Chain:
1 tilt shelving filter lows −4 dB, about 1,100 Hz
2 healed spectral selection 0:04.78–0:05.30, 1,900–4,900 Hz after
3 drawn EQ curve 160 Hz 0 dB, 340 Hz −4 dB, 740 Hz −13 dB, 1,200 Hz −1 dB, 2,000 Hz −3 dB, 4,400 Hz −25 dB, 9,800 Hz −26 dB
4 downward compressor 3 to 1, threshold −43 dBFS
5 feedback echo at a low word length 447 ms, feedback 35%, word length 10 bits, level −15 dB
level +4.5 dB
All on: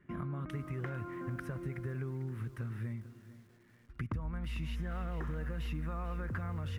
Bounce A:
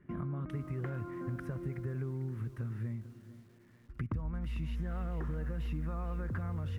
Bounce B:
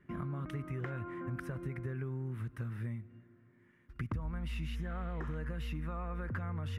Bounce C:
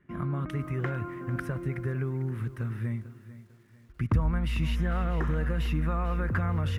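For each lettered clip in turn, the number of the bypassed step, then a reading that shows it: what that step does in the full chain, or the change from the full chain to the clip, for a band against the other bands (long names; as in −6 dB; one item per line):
1, change in integrated loudness +1.0 LU
5, change in momentary loudness spread −3 LU
4, average gain reduction 8.0 dB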